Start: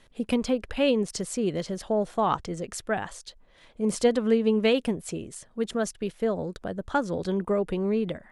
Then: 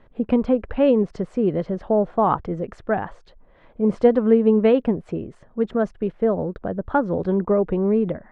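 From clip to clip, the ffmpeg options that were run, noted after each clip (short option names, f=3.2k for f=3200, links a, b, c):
-af "lowpass=1.3k,volume=6.5dB"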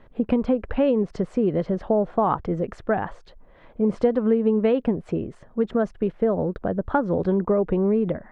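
-af "acompressor=threshold=-20dB:ratio=3,volume=2dB"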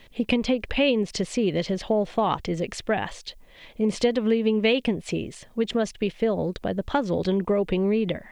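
-af "aexciter=amount=10.7:drive=3.3:freq=2.1k,volume=-2dB"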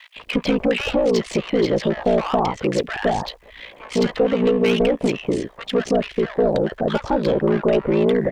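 -filter_complex "[0:a]aeval=exprs='val(0)*sin(2*PI*29*n/s)':c=same,asplit=2[a][b];[b]highpass=f=720:p=1,volume=23dB,asoftclip=type=tanh:threshold=-10dB[c];[a][c]amix=inputs=2:normalize=0,lowpass=f=1.2k:p=1,volume=-6dB,acrossover=split=1100[d][e];[d]adelay=160[f];[f][e]amix=inputs=2:normalize=0,volume=3dB"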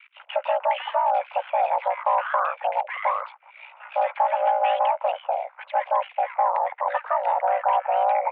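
-af "highpass=f=180:t=q:w=0.5412,highpass=f=180:t=q:w=1.307,lowpass=f=2.3k:t=q:w=0.5176,lowpass=f=2.3k:t=q:w=0.7071,lowpass=f=2.3k:t=q:w=1.932,afreqshift=360,volume=-3.5dB"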